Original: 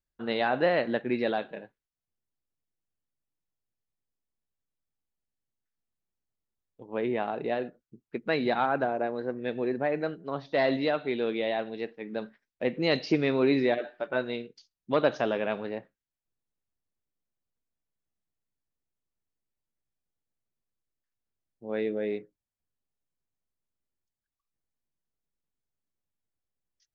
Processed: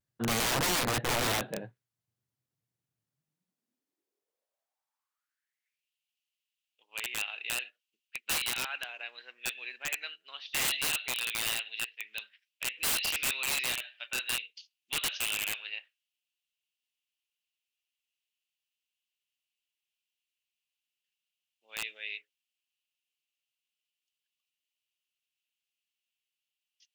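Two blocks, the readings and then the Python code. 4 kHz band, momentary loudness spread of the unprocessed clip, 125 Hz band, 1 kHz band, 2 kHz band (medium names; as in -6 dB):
+7.5 dB, 12 LU, -3.0 dB, -6.5 dB, +1.0 dB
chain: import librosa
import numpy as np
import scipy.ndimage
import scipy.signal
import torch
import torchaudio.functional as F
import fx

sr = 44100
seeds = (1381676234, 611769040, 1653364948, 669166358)

y = fx.filter_sweep_highpass(x, sr, from_hz=120.0, to_hz=2800.0, start_s=3.08, end_s=5.9, q=6.1)
y = (np.mod(10.0 ** (25.5 / 20.0) * y + 1.0, 2.0) - 1.0) / 10.0 ** (25.5 / 20.0)
y = fx.vibrato(y, sr, rate_hz=0.38, depth_cents=19.0)
y = y * librosa.db_to_amplitude(2.0)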